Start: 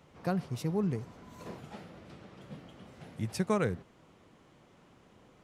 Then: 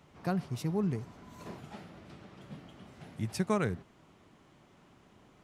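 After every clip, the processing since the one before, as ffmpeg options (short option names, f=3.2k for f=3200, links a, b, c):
-af "equalizer=f=500:w=7.9:g=-8"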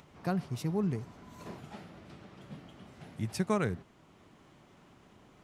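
-af "acompressor=mode=upward:threshold=-54dB:ratio=2.5"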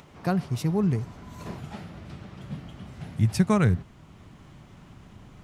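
-af "asubboost=boost=4:cutoff=180,volume=6.5dB"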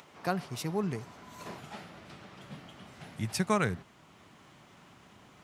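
-af "highpass=f=550:p=1"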